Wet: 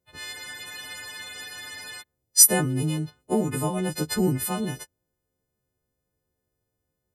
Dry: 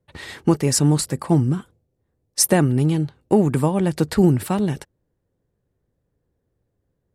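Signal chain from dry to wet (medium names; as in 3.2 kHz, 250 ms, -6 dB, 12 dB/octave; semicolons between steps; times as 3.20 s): partials quantised in pitch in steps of 3 st; spectral freeze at 0.35 s, 1.66 s; trim -7 dB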